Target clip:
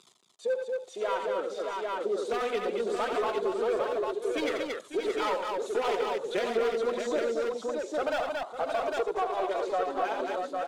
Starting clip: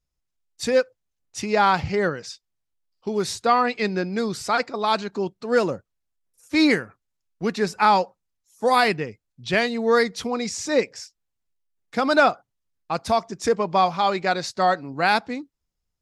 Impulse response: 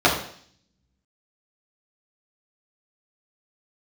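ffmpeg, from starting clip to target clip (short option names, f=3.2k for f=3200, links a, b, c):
-filter_complex "[0:a]aeval=exprs='val(0)+0.5*0.075*sgn(val(0))':c=same,afwtdn=0.0708,equalizer=f=2k:t=o:w=1.3:g=-6.5,dynaudnorm=f=320:g=21:m=9.5dB,highpass=f=360:w=0.5412,highpass=f=360:w=1.3066,equalizer=f=800:t=q:w=4:g=-5,equalizer=f=3.6k:t=q:w=4:g=8,equalizer=f=5.3k:t=q:w=4:g=-8,lowpass=f=9.2k:w=0.5412,lowpass=f=9.2k:w=1.3066,asoftclip=type=hard:threshold=-16dB,flanger=delay=0.8:depth=4.4:regen=-12:speed=0.16:shape=triangular,atempo=1.5,aecho=1:1:84|227|551|624|802:0.422|0.501|0.188|0.447|0.562,asplit=2[a][b];[1:a]atrim=start_sample=2205[c];[b][c]afir=irnorm=-1:irlink=0,volume=-41dB[d];[a][d]amix=inputs=2:normalize=0,acompressor=threshold=-26dB:ratio=2,volume=-3dB"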